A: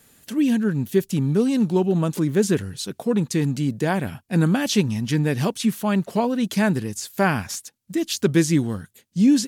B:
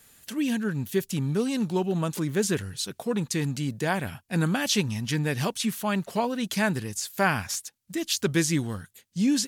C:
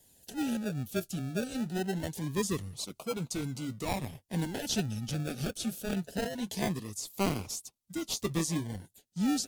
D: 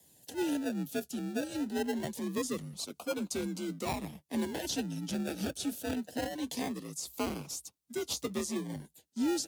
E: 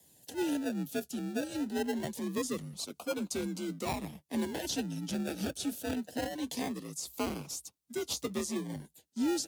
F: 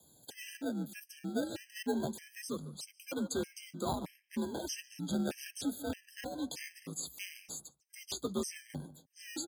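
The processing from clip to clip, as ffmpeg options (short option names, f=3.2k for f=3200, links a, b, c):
-af "equalizer=f=260:t=o:w=2.7:g=-7.5"
-filter_complex "[0:a]flanger=delay=0.6:depth=9.9:regen=-45:speed=0.41:shape=sinusoidal,acrossover=split=290|2700[a][b][c];[b]acrusher=samples=34:mix=1:aa=0.000001:lfo=1:lforange=20.4:lforate=0.23[d];[a][d][c]amix=inputs=3:normalize=0,volume=-2.5dB"
-af "alimiter=limit=-23.5dB:level=0:latency=1:release=440,afreqshift=56"
-af anull
-filter_complex "[0:a]tremolo=f=0.57:d=0.35,asplit=2[a][b];[b]adelay=146,lowpass=f=2.1k:p=1,volume=-15.5dB,asplit=2[c][d];[d]adelay=146,lowpass=f=2.1k:p=1,volume=0.17[e];[a][c][e]amix=inputs=3:normalize=0,afftfilt=real='re*gt(sin(2*PI*1.6*pts/sr)*(1-2*mod(floor(b*sr/1024/1600),2)),0)':imag='im*gt(sin(2*PI*1.6*pts/sr)*(1-2*mod(floor(b*sr/1024/1600),2)),0)':win_size=1024:overlap=0.75,volume=1.5dB"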